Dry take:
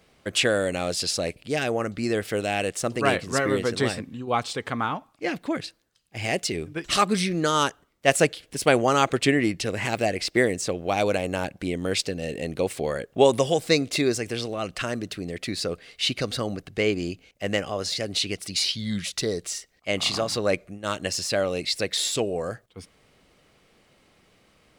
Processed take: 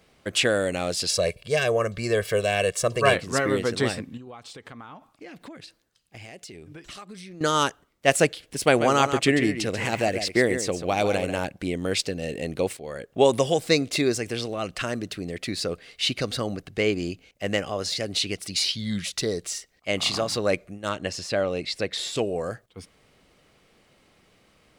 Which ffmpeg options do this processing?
-filter_complex "[0:a]asettb=1/sr,asplit=3[a][b][c];[a]atrim=end=1.094[d];[b]atrim=start=1.09:end=3.14,asetpts=PTS-STARTPTS,afade=t=in:d=0.004:c=qsin,afade=t=out:st=2.046:d=0.004:c=qsin,aecho=1:1:1.8:0.87,atrim=end_sample=90405[e];[c]atrim=start=3.136[f];[d][e]acrossfade=d=0.004:c1=hsin:c2=qsin[g];[g][f]acrossfade=d=0.004:c1=qsin:c2=hsin,asettb=1/sr,asplit=3[h][i][j];[h]atrim=end=4.174[k];[i]atrim=start=4.17:end=7.41,asetpts=PTS-STARTPTS,afade=t=in:d=0.004:c=qsin,afade=t=out:st=3.236:d=0.004:c=qsin,acompressor=threshold=-39dB:ratio=8:attack=3.2:release=140:knee=1:detection=peak[l];[j]atrim=start=7.406[m];[k][l]acrossfade=d=0.004:c1=hsin:c2=qsin[n];[n][m]acrossfade=d=0.004:c1=qsin:c2=hsin,asettb=1/sr,asplit=3[o][p][q];[o]atrim=end=8.644[r];[p]atrim=start=8.64:end=11.39,asetpts=PTS-STARTPTS,afade=t=in:d=0.004:c=qsin,afade=t=out:st=2.746:d=0.004:c=qsin,aecho=1:1:138:0.335,atrim=end_sample=121275[s];[q]atrim=start=11.386[t];[r][s]acrossfade=d=0.004:c1=hsin:c2=qsin[u];[u][t]acrossfade=d=0.004:c1=qsin:c2=hsin,asettb=1/sr,asplit=3[v][w][x];[v]atrim=end=20.894[y];[w]atrim=start=20.89:end=22.16,asetpts=PTS-STARTPTS,afade=t=in:d=0.004:c=qsin,afade=t=out:st=1.266:d=0.004:c=qsin,aemphasis=mode=reproduction:type=50kf[z];[x]atrim=start=22.156[aa];[y][z]acrossfade=d=0.004:c1=hsin:c2=qsin[ab];[ab][aa]acrossfade=d=0.004:c1=qsin:c2=hsin,asplit=2[ac][ad];[ac]atrim=end=12.77,asetpts=PTS-STARTPTS,afade=t=out:st=12.766:d=0.004:c=hsin:silence=0.158489[ae];[ad]atrim=start=12.77,asetpts=PTS-STARTPTS,afade=t=in:d=0.68:c=qsin:silence=0.158489[af];[ae][af]concat=n=2:v=0:a=1"

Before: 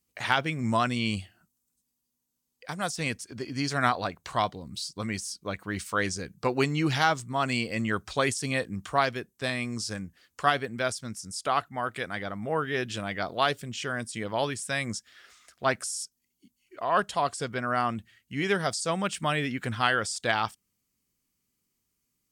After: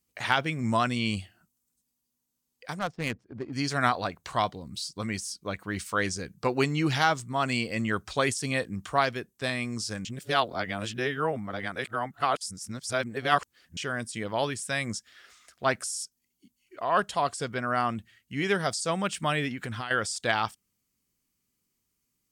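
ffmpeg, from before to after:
-filter_complex "[0:a]asettb=1/sr,asplit=3[a][b][c];[a]atrim=end=2.794[d];[b]atrim=start=2.79:end=3.53,asetpts=PTS-STARTPTS,afade=t=in:d=0.004:c=qsin,afade=t=out:st=0.736:d=0.004:c=qsin,adynamicsmooth=sensitivity=3.5:basefreq=630[e];[c]atrim=start=3.526[f];[d][e]acrossfade=d=0.004:c1=hsin:c2=qsin[g];[g][f]acrossfade=d=0.004:c1=qsin:c2=hsin,asettb=1/sr,asplit=3[h][i][j];[h]atrim=end=19.484[k];[i]atrim=start=19.48:end=19.91,asetpts=PTS-STARTPTS,afade=t=in:d=0.004:c=qsin,afade=t=out:st=0.426:d=0.004:c=qsin,acompressor=threshold=-30dB:ratio=10:attack=3.2:release=140:knee=1:detection=peak[l];[j]atrim=start=19.906[m];[k][l]acrossfade=d=0.004:c1=hsin:c2=qsin[n];[n][m]acrossfade=d=0.004:c1=qsin:c2=hsin,asplit=3[o][p][q];[o]atrim=end=10.052[r];[p]atrim=start=10.048:end=13.772,asetpts=PTS-STARTPTS,areverse[s];[q]atrim=start=13.768[t];[r][s]acrossfade=d=0.004:c1=hsin:c2=hsin[u];[u][t]acrossfade=d=0.004:c1=hsin:c2=hsin"

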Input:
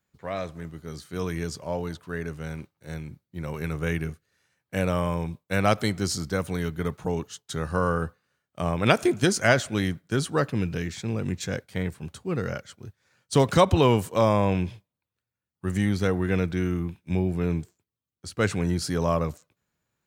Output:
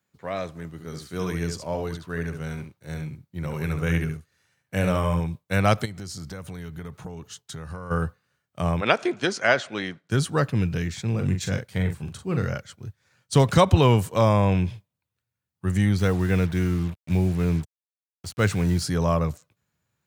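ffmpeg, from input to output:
-filter_complex "[0:a]asettb=1/sr,asplit=3[a][b][c];[a]atrim=end=0.714[d];[b]atrim=start=0.71:end=5.2,asetpts=PTS-STARTPTS,afade=t=in:d=0.004:c=qsin,afade=t=out:st=4.486:d=0.004:c=qsin,aecho=1:1:71:0.473,atrim=end_sample=198009[e];[c]atrim=start=5.196[f];[d][e]acrossfade=d=0.004:c1=hsin:c2=qsin[g];[g][f]acrossfade=d=0.004:c1=qsin:c2=hsin,asplit=3[h][i][j];[h]afade=t=out:st=5.84:d=0.02[k];[i]acompressor=threshold=-36dB:ratio=4:attack=3.2:release=140:knee=1:detection=peak,afade=t=in:st=5.84:d=0.02,afade=t=out:st=7.9:d=0.02[l];[j]afade=t=in:st=7.9:d=0.02[m];[k][l][m]amix=inputs=3:normalize=0,asplit=3[n][o][p];[n]afade=t=out:st=8.8:d=0.02[q];[o]highpass=330,lowpass=4.4k,afade=t=in:st=8.8:d=0.02,afade=t=out:st=10.08:d=0.02[r];[p]afade=t=in:st=10.08:d=0.02[s];[q][r][s]amix=inputs=3:normalize=0,asettb=1/sr,asplit=3[t][u][v];[t]atrim=end=11.104[w];[u]atrim=start=11.1:end=12.46,asetpts=PTS-STARTPTS,afade=t=in:d=0.004:c=qsin,afade=t=out:st=1.356:d=0.004:c=qsin,asplit=2[x][y];[y]adelay=42,volume=-7dB[z];[x][z]amix=inputs=2:normalize=0,atrim=end_sample=59976[aa];[v]atrim=start=12.456[ab];[w][aa]acrossfade=d=0.004:c1=hsin:c2=qsin[ac];[ac][ab]acrossfade=d=0.004:c1=qsin:c2=hsin,asettb=1/sr,asplit=3[ad][ae][af];[ad]atrim=end=15.984[ag];[ae]atrim=start=15.98:end=18.84,asetpts=PTS-STARTPTS,afade=t=in:d=0.004:c=qsin,afade=t=out:st=2.856:d=0.004:c=qsin,acrusher=bits=6:mix=0:aa=0.5[ah];[af]atrim=start=18.836[ai];[ag][ah]acrossfade=d=0.004:c1=hsin:c2=qsin[aj];[aj][ai]acrossfade=d=0.004:c1=qsin:c2=hsin,highpass=100,asubboost=boost=3:cutoff=140,volume=1.5dB"

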